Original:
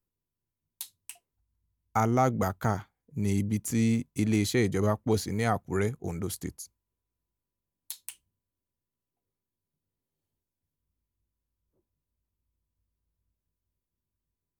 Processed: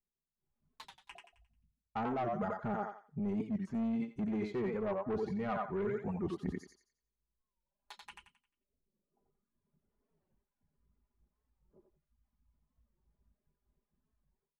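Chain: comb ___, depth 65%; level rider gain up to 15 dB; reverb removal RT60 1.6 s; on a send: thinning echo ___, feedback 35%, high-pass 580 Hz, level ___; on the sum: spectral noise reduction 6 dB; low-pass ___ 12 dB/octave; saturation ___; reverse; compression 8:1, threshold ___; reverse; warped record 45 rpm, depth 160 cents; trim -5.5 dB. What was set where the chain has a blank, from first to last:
4.9 ms, 88 ms, -3 dB, 1.3 kHz, -12.5 dBFS, -28 dBFS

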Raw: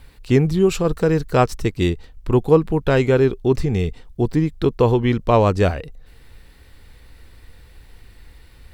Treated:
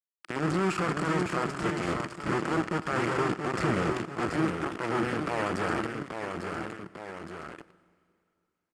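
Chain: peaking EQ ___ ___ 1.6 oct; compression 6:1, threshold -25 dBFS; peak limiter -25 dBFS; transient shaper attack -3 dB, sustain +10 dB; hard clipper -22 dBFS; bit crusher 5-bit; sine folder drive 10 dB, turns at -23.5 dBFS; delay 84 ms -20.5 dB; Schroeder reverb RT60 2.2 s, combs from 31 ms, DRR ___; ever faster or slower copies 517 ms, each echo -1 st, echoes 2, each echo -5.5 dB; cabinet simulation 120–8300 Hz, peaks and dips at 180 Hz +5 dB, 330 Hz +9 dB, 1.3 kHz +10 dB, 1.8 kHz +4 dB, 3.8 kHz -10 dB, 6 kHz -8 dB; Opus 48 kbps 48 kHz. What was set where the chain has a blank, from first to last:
260 Hz, -4 dB, 18 dB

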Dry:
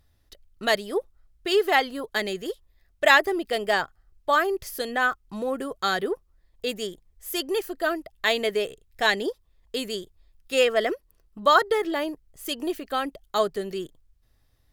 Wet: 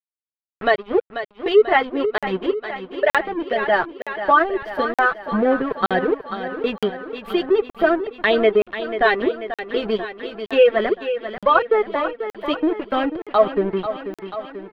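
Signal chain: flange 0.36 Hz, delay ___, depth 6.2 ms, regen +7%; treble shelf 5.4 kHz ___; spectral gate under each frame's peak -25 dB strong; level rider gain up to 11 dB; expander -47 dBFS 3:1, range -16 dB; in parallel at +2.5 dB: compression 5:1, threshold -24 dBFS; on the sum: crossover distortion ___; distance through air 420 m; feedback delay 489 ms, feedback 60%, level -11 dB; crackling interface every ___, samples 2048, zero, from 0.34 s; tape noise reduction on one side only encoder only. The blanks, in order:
4 ms, -5 dB, -27 dBFS, 0.92 s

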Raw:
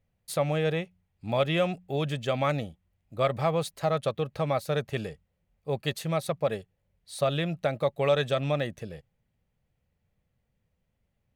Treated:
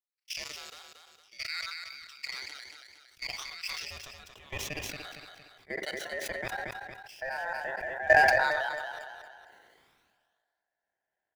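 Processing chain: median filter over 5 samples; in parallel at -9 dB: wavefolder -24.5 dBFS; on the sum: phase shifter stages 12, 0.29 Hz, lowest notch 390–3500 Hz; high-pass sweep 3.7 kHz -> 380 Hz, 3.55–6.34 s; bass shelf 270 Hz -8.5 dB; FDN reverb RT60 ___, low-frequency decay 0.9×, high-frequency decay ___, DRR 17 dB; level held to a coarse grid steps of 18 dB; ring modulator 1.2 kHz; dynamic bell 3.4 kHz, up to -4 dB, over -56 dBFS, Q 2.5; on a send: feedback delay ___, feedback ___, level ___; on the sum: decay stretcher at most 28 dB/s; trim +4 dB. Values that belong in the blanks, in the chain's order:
1.2 s, 0.55×, 230 ms, 20%, -8 dB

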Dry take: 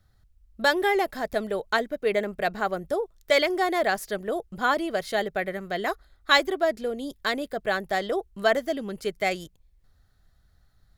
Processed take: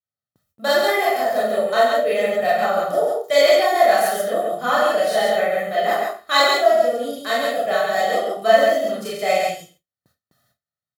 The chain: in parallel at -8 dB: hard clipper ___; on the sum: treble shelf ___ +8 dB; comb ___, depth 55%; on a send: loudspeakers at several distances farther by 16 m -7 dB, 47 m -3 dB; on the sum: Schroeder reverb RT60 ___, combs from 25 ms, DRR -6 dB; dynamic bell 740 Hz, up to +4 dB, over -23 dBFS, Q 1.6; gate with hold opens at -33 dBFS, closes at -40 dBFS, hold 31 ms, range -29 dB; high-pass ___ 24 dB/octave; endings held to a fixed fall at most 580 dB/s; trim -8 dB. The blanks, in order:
-19 dBFS, 7.6 kHz, 1.6 ms, 0.38 s, 130 Hz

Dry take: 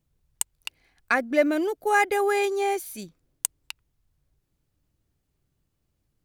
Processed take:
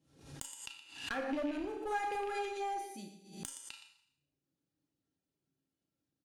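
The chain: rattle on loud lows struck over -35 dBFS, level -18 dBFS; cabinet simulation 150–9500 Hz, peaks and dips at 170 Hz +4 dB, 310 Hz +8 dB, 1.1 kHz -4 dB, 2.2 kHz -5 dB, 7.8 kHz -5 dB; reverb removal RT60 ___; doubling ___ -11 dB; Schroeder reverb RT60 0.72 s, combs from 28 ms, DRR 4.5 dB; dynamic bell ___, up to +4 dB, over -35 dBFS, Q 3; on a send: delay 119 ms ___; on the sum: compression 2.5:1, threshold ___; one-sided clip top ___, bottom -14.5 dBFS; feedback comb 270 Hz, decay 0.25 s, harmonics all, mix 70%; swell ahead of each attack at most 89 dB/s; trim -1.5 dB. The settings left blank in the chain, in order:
0.8 s, 34 ms, 750 Hz, -13 dB, -26 dBFS, -27 dBFS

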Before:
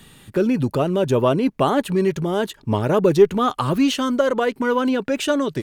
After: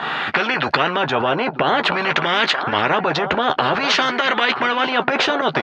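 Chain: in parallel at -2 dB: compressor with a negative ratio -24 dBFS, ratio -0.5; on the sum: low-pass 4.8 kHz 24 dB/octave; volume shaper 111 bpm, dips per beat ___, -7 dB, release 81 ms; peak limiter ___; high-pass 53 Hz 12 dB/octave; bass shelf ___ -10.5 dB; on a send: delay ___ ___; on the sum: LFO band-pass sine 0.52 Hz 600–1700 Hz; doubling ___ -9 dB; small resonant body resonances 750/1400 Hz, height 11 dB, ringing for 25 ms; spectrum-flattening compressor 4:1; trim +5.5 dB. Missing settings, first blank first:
1, -9.5 dBFS, 93 Hz, 933 ms, -22 dB, 13 ms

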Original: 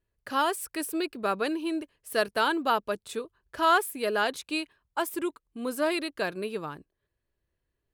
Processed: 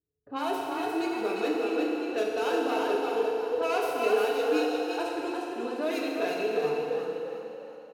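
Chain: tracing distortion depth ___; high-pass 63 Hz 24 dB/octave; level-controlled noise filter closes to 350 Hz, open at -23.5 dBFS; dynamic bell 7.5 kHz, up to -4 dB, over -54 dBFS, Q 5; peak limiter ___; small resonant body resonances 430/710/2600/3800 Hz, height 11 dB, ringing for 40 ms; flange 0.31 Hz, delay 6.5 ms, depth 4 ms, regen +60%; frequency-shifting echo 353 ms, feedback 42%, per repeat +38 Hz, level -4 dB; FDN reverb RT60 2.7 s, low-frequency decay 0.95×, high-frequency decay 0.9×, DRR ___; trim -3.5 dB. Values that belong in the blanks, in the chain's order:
0.13 ms, -20.5 dBFS, -2 dB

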